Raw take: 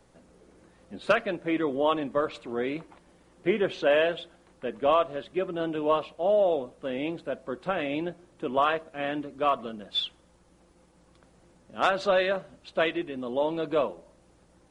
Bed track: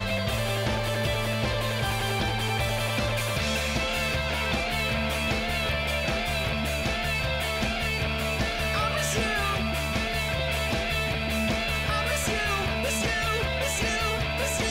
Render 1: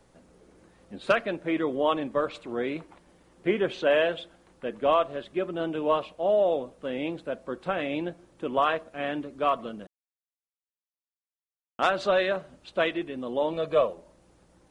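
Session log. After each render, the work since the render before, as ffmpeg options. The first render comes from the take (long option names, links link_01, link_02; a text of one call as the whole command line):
ffmpeg -i in.wav -filter_complex "[0:a]asettb=1/sr,asplit=3[link_01][link_02][link_03];[link_01]atrim=end=13.534[link_04];[link_02]atrim=start=13.53:end=13.93,asetpts=PTS-STARTPTS,afade=type=in:duration=0.004:curve=qsin,afade=type=out:start_time=0.396:duration=0.004:curve=qsin,aecho=1:1:1.7:0.58,atrim=end_sample=17640[link_05];[link_03]atrim=start=13.926[link_06];[link_04][link_05]acrossfade=duration=0.004:curve1=hsin:curve2=qsin[link_07];[link_07][link_06]acrossfade=duration=0.004:curve1=qsin:curve2=hsin,asplit=3[link_08][link_09][link_10];[link_08]atrim=end=9.87,asetpts=PTS-STARTPTS,afade=type=out:start_time=9.866:duration=0.004:curve=hsin[link_11];[link_09]atrim=start=9.87:end=11.79,asetpts=PTS-STARTPTS,volume=0[link_12];[link_10]atrim=start=11.79,asetpts=PTS-STARTPTS,afade=type=in:duration=0.004:curve=hsin[link_13];[link_11][link_12][link_13]concat=n=3:v=0:a=1" out.wav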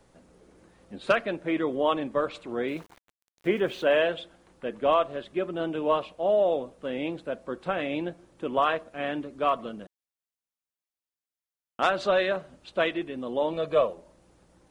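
ffmpeg -i in.wav -filter_complex "[0:a]asettb=1/sr,asplit=3[link_01][link_02][link_03];[link_01]atrim=end=2.684[link_04];[link_02]atrim=start=2.68:end=3.9,asetpts=PTS-STARTPTS,afade=type=in:duration=0.004:curve=qsin,afade=type=out:start_time=1.216:duration=0.004:curve=qsin,aeval=exprs='val(0)*gte(abs(val(0)),0.00376)':channel_layout=same[link_05];[link_03]atrim=start=3.896[link_06];[link_04][link_05]acrossfade=duration=0.004:curve1=hsin:curve2=qsin[link_07];[link_07][link_06]acrossfade=duration=0.004:curve1=qsin:curve2=hsin" out.wav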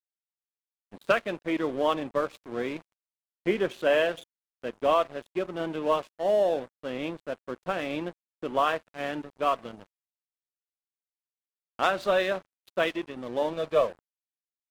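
ffmpeg -i in.wav -af "aeval=exprs='sgn(val(0))*max(abs(val(0))-0.00841,0)':channel_layout=same" out.wav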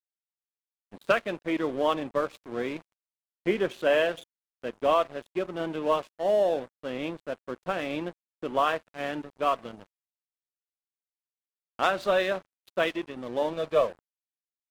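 ffmpeg -i in.wav -af anull out.wav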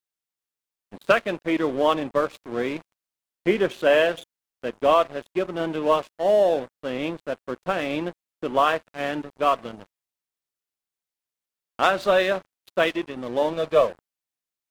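ffmpeg -i in.wav -af "volume=5dB" out.wav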